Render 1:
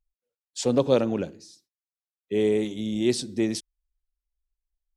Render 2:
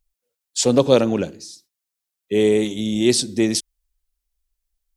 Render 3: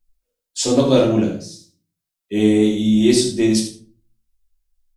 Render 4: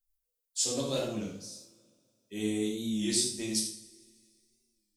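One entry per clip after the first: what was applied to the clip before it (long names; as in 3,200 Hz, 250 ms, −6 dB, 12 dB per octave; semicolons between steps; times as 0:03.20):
high-shelf EQ 3,700 Hz +7.5 dB; level +6 dB
on a send: repeating echo 78 ms, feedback 17%, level −10 dB; on the sum: rectangular room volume 260 cubic metres, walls furnished, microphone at 2.8 metres; level −5 dB
first-order pre-emphasis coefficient 0.8; coupled-rooms reverb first 0.49 s, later 2.3 s, from −18 dB, DRR 5.5 dB; wow of a warped record 33 1/3 rpm, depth 100 cents; level −5.5 dB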